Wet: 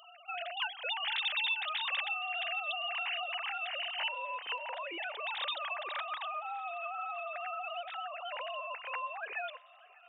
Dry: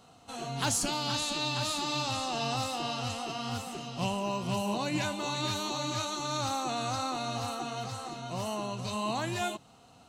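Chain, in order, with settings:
three sine waves on the formant tracks
speech leveller within 3 dB 0.5 s
high-shelf EQ 2,500 Hz +10 dB, from 0:04.58 −2 dB, from 0:05.61 +4 dB
downward compressor, threshold −34 dBFS, peak gain reduction 11.5 dB
spectral tilt +4.5 dB per octave
feedback echo with a high-pass in the loop 597 ms, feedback 73%, high-pass 220 Hz, level −24 dB
level −2.5 dB

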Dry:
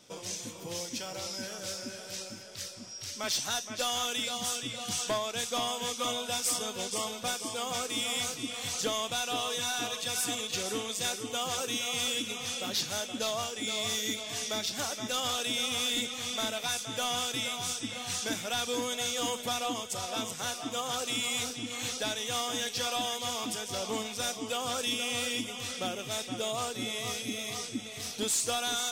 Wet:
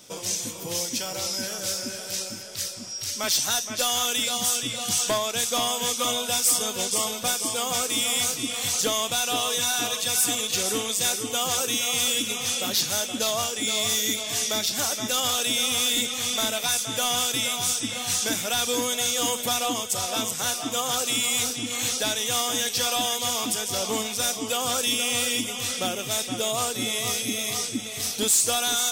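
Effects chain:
high-shelf EQ 8,000 Hz +12 dB
in parallel at 0 dB: brickwall limiter −22.5 dBFS, peak gain reduction 7.5 dB

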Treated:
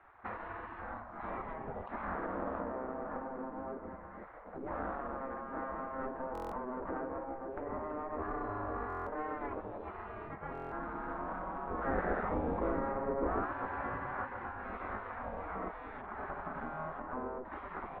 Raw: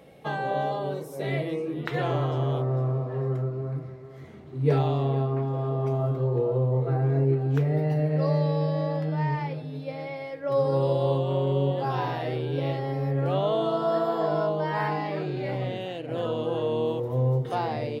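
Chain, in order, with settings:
lower of the sound and its delayed copy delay 0.49 ms
downward compressor 5 to 1, threshold −34 dBFS, peak gain reduction 15 dB
0:11.71–0:14.25: low-shelf EQ 370 Hz +9.5 dB
gate on every frequency bin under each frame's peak −15 dB weak
low-pass filter 1,500 Hz 24 dB per octave
buffer that repeats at 0:06.33/0:08.88/0:10.53, samples 1,024, times 7
level +7.5 dB

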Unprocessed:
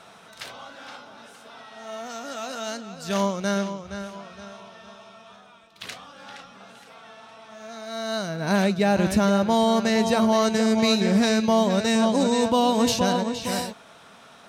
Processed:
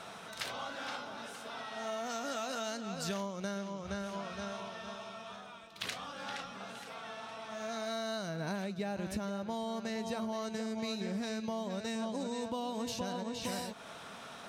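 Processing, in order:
downward compressor 12 to 1, threshold −35 dBFS, peak gain reduction 19.5 dB
level +1 dB

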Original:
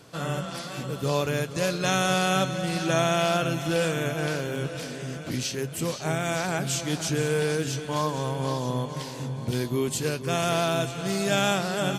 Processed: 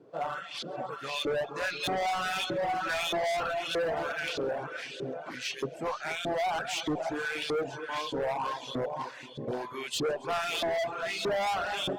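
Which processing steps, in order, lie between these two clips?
hum removal 95.78 Hz, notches 36
auto-filter band-pass saw up 1.6 Hz 320–3,800 Hz
dynamic equaliser 750 Hz, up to +7 dB, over −50 dBFS, Q 2.5
automatic gain control gain up to 4 dB
on a send: echo with a time of its own for lows and highs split 2,500 Hz, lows 238 ms, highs 135 ms, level −15 dB
on the sum: hard clipping −30 dBFS, distortion −4 dB
reverb reduction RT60 0.76 s
level +3.5 dB
Opus 256 kbit/s 48,000 Hz

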